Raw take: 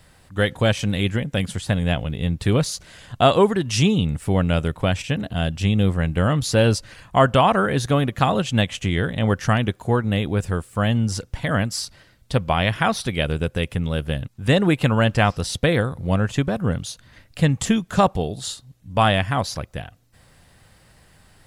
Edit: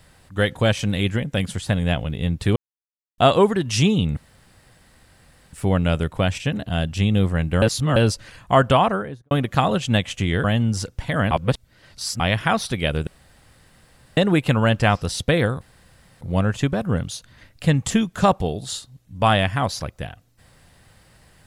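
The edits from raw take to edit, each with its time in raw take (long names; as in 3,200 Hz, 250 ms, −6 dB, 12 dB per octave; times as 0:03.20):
0:02.56–0:03.18: silence
0:04.17: splice in room tone 1.36 s
0:06.26–0:06.60: reverse
0:07.36–0:07.95: fade out and dull
0:09.08–0:10.79: remove
0:11.66–0:12.55: reverse
0:13.42–0:14.52: fill with room tone
0:15.96: splice in room tone 0.60 s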